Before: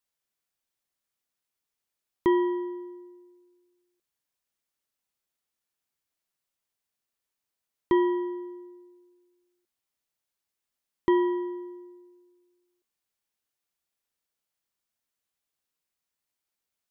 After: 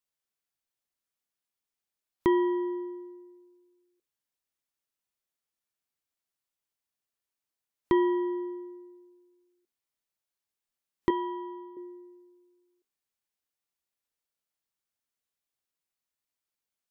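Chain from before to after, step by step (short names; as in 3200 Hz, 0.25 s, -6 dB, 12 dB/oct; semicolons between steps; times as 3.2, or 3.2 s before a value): spectral noise reduction 8 dB; in parallel at +3 dB: compressor, threshold -32 dBFS, peak gain reduction 13 dB; 11.1–11.77 on the sum: fixed phaser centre 1700 Hz, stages 6; gain -4 dB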